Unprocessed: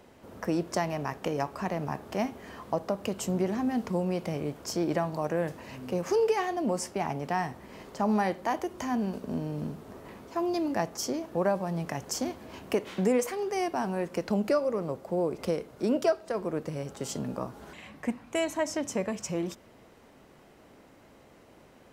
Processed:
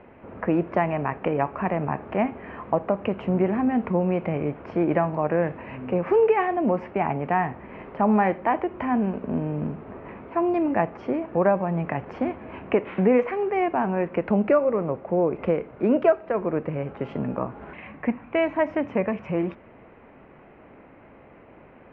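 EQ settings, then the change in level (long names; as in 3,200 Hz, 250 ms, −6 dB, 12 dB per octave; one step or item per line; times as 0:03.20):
Chebyshev low-pass filter 2,500 Hz, order 4
+7.0 dB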